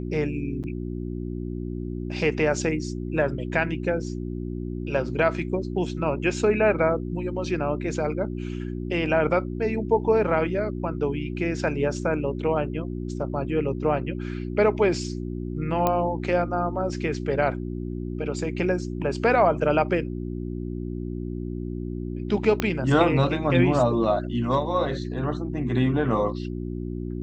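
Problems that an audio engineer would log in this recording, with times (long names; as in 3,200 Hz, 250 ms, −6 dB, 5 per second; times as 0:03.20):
mains hum 60 Hz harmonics 6 −31 dBFS
0:00.63–0:00.64: drop-out 8.2 ms
0:15.87: click −9 dBFS
0:22.60: click −9 dBFS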